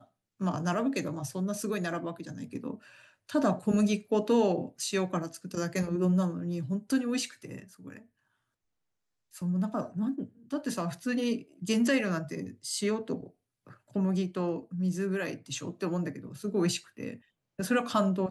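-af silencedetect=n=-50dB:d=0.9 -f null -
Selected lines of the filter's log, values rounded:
silence_start: 8.03
silence_end: 9.33 | silence_duration: 1.30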